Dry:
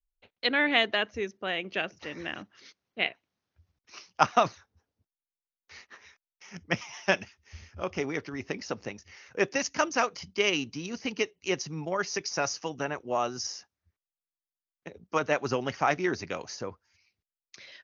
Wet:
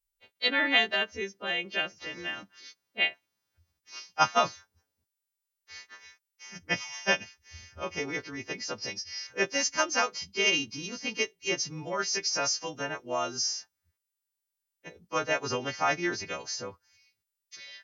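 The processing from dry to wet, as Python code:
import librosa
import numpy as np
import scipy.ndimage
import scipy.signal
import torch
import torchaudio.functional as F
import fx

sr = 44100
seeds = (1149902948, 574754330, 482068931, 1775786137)

y = fx.freq_snap(x, sr, grid_st=2)
y = fx.lowpass_res(y, sr, hz=5200.0, q=7.6, at=(8.78, 9.27))
y = y * 10.0 ** (-2.5 / 20.0)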